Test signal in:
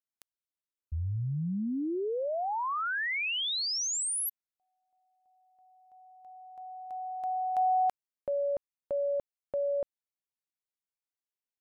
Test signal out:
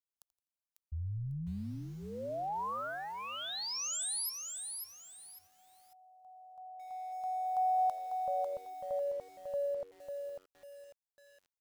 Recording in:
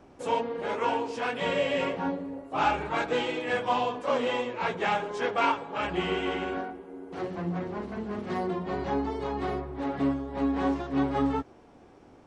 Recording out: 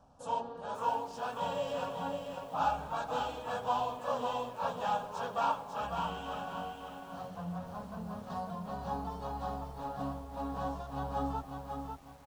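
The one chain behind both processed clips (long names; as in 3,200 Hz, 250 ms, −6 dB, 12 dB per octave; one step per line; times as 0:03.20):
phaser with its sweep stopped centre 870 Hz, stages 4
echo with shifted repeats 84 ms, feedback 35%, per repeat −92 Hz, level −19 dB
feedback echo at a low word length 547 ms, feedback 35%, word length 9 bits, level −5 dB
level −4.5 dB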